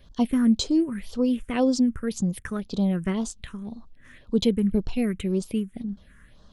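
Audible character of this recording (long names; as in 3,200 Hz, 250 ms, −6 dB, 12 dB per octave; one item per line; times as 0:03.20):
phaser sweep stages 4, 1.9 Hz, lowest notch 700–2,100 Hz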